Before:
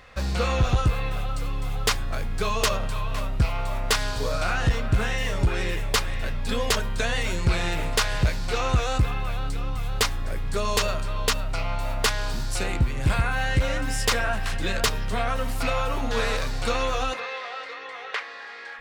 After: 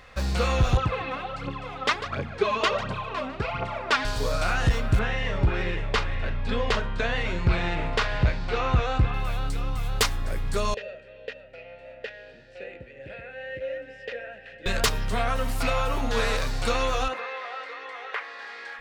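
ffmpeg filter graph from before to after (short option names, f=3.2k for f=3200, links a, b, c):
-filter_complex "[0:a]asettb=1/sr,asplit=3[a][b][c];[a]atrim=end=0.774[d];[b]atrim=start=0.77:end=4.05,asetpts=PTS-STARTPTS,afade=t=in:d=0.004:c=qsin,afade=t=out:st=3.276:d=0.004:c=qsin,aecho=1:1:148:0.224,atrim=end_sample=144648,aphaser=in_gain=1:out_gain=1:delay=4:decay=0.69:speed=1.4:type=triangular,highpass=160,lowpass=3k[e];[c]atrim=start=4.046[f];[d][e]acrossfade=d=0.004:c1=hsin:c2=qsin[g];[g][f]acrossfade=d=0.004:c1=qsin:c2=hsin,asettb=1/sr,asplit=3[h][i][j];[h]atrim=end=4.994[k];[i]atrim=start=4.99:end=9.14,asetpts=PTS-STARTPTS,afade=t=in:d=0.004:c=qsin,afade=t=out:st=4.146:d=0.004:c=qsin,lowpass=3.1k,asplit=2[l][m];[m]adelay=45,volume=-12dB[n];[l][n]amix=inputs=2:normalize=0,atrim=end_sample=183015[o];[j]atrim=start=9.136[p];[k][o]acrossfade=d=0.004:c1=hsin:c2=qsin[q];[q][p]acrossfade=d=0.004:c1=qsin:c2=hsin,asettb=1/sr,asplit=3[r][s][t];[r]atrim=end=10.744[u];[s]atrim=start=10.74:end=14.66,asetpts=PTS-STARTPTS,afade=t=in:d=0.004:c=qsin,afade=t=out:st=3.916:d=0.004:c=qsin,acrossover=split=6000[v][w];[w]acompressor=threshold=-49dB:ratio=4:attack=1:release=60[x];[v][x]amix=inputs=2:normalize=0,asplit=3[y][z][aa];[y]bandpass=f=530:t=q:w=8,volume=0dB[ab];[z]bandpass=f=1.84k:t=q:w=8,volume=-6dB[ac];[aa]bandpass=f=2.48k:t=q:w=8,volume=-9dB[ad];[ab][ac][ad]amix=inputs=3:normalize=0,bass=f=250:g=5,treble=f=4k:g=-4[ae];[t]atrim=start=14.656[af];[u][ae]acrossfade=d=0.004:c1=hsin:c2=qsin[ag];[ag][af]acrossfade=d=0.004:c1=qsin:c2=hsin,asettb=1/sr,asplit=3[ah][ai][aj];[ah]atrim=end=17.084[ak];[ai]atrim=start=17.08:end=18.39,asetpts=PTS-STARTPTS,afade=t=in:d=0.004:c=qsin,afade=t=out:st=1.306:d=0.004:c=qsin,highpass=f=250:p=1,acrossover=split=2600[al][am];[am]acompressor=threshold=-49dB:ratio=4:attack=1:release=60[an];[al][an]amix=inputs=2:normalize=0[ao];[aj]atrim=start=18.386[ap];[ak][ao]acrossfade=d=0.004:c1=hsin:c2=qsin[aq];[aq][ap]acrossfade=d=0.004:c1=qsin:c2=hsin"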